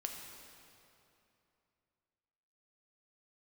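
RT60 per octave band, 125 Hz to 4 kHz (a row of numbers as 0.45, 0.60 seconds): 3.2, 3.0, 2.9, 2.8, 2.5, 2.2 seconds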